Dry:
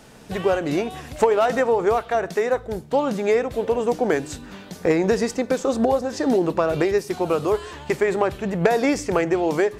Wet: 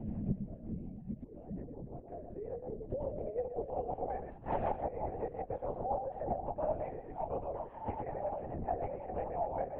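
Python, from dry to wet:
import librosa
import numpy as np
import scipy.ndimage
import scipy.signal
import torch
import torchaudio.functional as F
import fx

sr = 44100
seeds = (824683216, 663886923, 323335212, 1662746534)

p1 = fx.low_shelf(x, sr, hz=400.0, db=-4.0)
p2 = p1 + 0.35 * np.pad(p1, (int(6.7 * sr / 1000.0), 0))[:len(p1)]
p3 = fx.over_compress(p2, sr, threshold_db=-20.0, ratio=-0.5)
p4 = fx.gate_flip(p3, sr, shuts_db=-26.0, range_db=-25)
p5 = fx.fixed_phaser(p4, sr, hz=1300.0, stages=6)
p6 = p5 + fx.echo_single(p5, sr, ms=115, db=-6.5, dry=0)
p7 = fx.filter_sweep_lowpass(p6, sr, from_hz=220.0, to_hz=810.0, start_s=1.77, end_s=4.04, q=3.0)
p8 = fx.rotary(p7, sr, hz=5.5)
p9 = fx.lpc_vocoder(p8, sr, seeds[0], excitation='whisper', order=10)
p10 = fx.band_squash(p9, sr, depth_pct=40)
y = p10 * 10.0 ** (12.0 / 20.0)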